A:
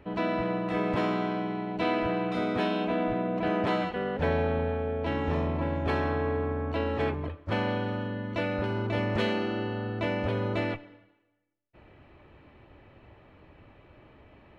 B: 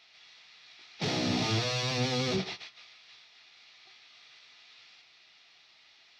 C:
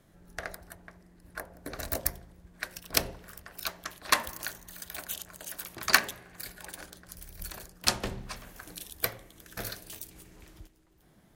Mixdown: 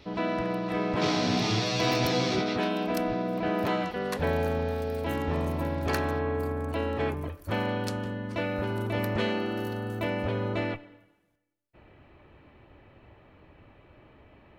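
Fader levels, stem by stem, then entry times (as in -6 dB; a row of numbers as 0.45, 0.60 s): -0.5, +1.0, -15.0 dB; 0.00, 0.00, 0.00 s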